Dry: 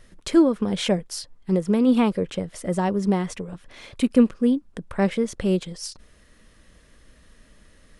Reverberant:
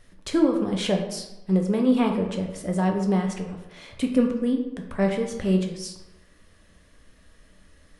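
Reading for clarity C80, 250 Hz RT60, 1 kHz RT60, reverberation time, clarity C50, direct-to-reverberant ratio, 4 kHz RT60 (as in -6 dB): 9.0 dB, 0.95 s, 1.0 s, 1.0 s, 6.5 dB, 2.0 dB, 0.60 s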